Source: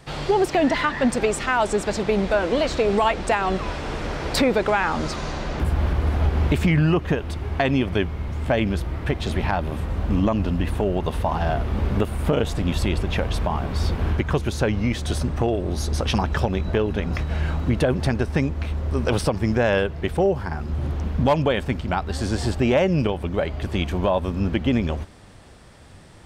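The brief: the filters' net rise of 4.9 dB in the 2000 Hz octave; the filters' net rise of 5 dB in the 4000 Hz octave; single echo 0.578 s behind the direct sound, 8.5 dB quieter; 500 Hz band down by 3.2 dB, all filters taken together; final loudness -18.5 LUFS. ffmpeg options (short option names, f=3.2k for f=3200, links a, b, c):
-af "equalizer=f=500:t=o:g=-4.5,equalizer=f=2k:t=o:g=5.5,equalizer=f=4k:t=o:g=4.5,aecho=1:1:578:0.376,volume=4dB"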